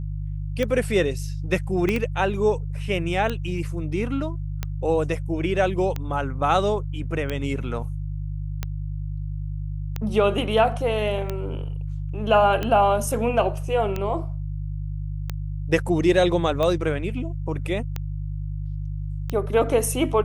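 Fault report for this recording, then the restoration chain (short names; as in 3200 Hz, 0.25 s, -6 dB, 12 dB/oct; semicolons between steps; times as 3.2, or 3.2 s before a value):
hum 50 Hz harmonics 3 -29 dBFS
tick 45 rpm -13 dBFS
1.89 pop -12 dBFS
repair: de-click; de-hum 50 Hz, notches 3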